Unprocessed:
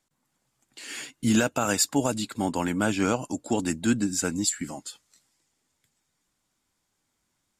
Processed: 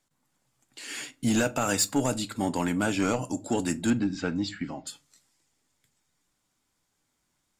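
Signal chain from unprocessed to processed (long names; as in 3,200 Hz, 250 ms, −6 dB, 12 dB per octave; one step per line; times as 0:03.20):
0:03.90–0:04.87: low-pass filter 4,100 Hz 24 dB per octave
soft clipping −16 dBFS, distortion −18 dB
rectangular room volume 150 cubic metres, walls furnished, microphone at 0.34 metres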